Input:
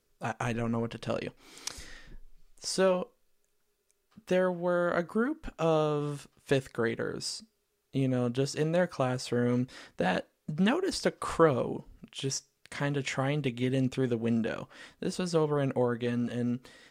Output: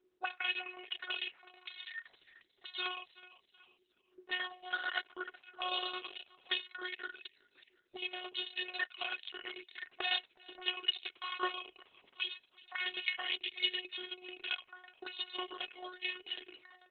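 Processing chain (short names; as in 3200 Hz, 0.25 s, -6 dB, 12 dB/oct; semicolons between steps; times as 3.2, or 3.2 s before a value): RIAA curve recording; comb 4.4 ms, depth 61%; 9.93–11.45 dynamic EQ 1700 Hz, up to -3 dB, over -46 dBFS, Q 3.3; harmonic-percussive split harmonic +8 dB; robotiser 364 Hz; tremolo saw down 9.1 Hz, depth 65%; 7.26–7.98 flipped gate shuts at -19 dBFS, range -25 dB; auto-wah 350–3000 Hz, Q 2.8, up, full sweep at -32.5 dBFS; feedback echo 0.37 s, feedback 32%, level -19 dB; gain +7 dB; Opus 6 kbps 48000 Hz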